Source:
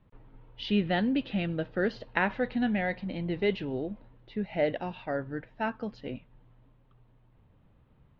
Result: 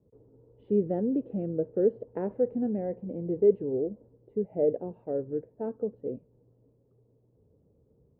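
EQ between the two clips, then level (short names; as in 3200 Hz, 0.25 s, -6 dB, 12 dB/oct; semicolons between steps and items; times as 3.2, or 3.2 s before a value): HPF 52 Hz 24 dB/oct; synth low-pass 450 Hz, resonance Q 4.7; air absorption 78 m; -4.0 dB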